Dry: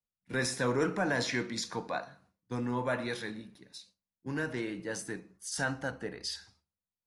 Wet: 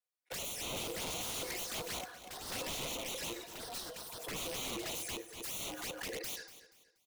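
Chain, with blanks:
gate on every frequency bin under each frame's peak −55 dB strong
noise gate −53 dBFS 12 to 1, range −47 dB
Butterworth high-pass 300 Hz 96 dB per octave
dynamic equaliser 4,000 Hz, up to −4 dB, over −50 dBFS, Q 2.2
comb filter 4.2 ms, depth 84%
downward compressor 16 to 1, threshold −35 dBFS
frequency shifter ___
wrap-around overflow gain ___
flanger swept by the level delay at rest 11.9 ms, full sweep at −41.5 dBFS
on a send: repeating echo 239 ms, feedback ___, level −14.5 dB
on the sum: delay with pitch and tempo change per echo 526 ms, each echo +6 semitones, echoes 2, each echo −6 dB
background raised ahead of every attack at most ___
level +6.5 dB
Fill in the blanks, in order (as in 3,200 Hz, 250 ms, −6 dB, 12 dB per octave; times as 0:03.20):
+33 Hz, 39 dB, 33%, 73 dB per second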